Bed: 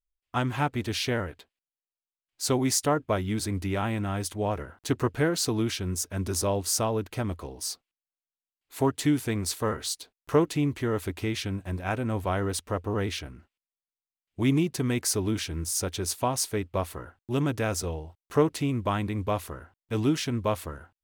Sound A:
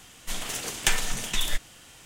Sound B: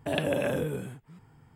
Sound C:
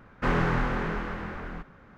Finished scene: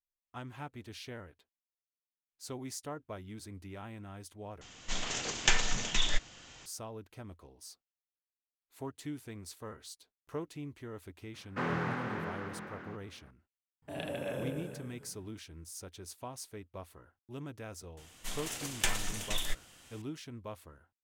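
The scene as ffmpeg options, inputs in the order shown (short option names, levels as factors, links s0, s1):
-filter_complex "[1:a]asplit=2[s0][s1];[0:a]volume=0.141[s2];[s0]aresample=16000,aresample=44100[s3];[3:a]highpass=f=120:w=0.5412,highpass=f=120:w=1.3066[s4];[2:a]aecho=1:1:30|78|154.8|277.7|474.3:0.794|0.631|0.501|0.398|0.316[s5];[s2]asplit=2[s6][s7];[s6]atrim=end=4.614[s8];[s3]atrim=end=2.05,asetpts=PTS-STARTPTS,volume=0.794[s9];[s7]atrim=start=6.656[s10];[s4]atrim=end=1.97,asetpts=PTS-STARTPTS,volume=0.422,afade=t=in:d=0.004:c=hsin,afade=t=out:st=1.966:d=0.004:c=hsin,adelay=11340[s11];[s5]atrim=end=1.55,asetpts=PTS-STARTPTS,volume=0.211,afade=t=in:d=0.004:c=hsin,afade=t=out:st=1.546:d=0.004:c=hsin,adelay=13820[s12];[s1]atrim=end=2.05,asetpts=PTS-STARTPTS,volume=0.422,afade=t=in:d=0.004:c=hsin,afade=t=out:st=2.046:d=0.004:c=hsin,adelay=17970[s13];[s8][s9]acrossfade=d=0.004:c1=hsin:c2=hsin[s14];[s14][s10]acrossfade=d=0.004:c1=hsin:c2=hsin[s15];[s15][s11][s12][s13]amix=inputs=4:normalize=0"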